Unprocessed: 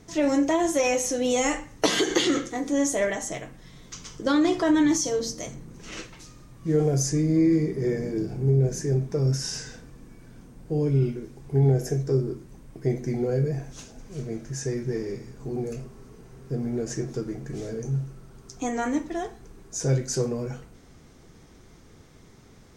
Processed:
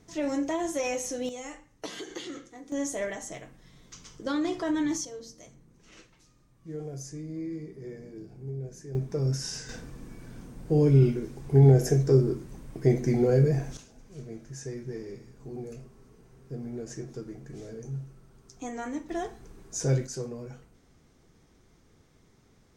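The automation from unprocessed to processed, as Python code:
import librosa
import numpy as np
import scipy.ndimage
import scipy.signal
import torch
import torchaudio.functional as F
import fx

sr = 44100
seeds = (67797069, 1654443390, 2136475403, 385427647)

y = fx.gain(x, sr, db=fx.steps((0.0, -7.0), (1.29, -16.5), (2.72, -7.5), (5.05, -15.5), (8.95, -4.0), (9.69, 3.0), (13.77, -8.5), (19.09, -2.0), (20.07, -9.5)))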